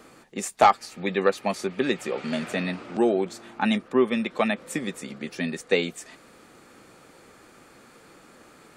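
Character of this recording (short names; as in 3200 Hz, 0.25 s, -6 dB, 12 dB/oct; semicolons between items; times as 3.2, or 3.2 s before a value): noise floor -53 dBFS; spectral tilt -3.5 dB/oct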